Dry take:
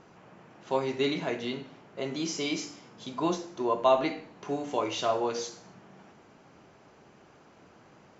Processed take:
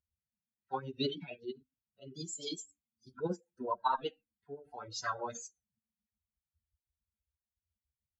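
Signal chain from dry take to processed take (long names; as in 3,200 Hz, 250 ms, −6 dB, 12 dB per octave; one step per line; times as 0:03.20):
spectral dynamics exaggerated over time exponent 3
formants moved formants +6 semitones
rotating-speaker cabinet horn 8 Hz
level +1 dB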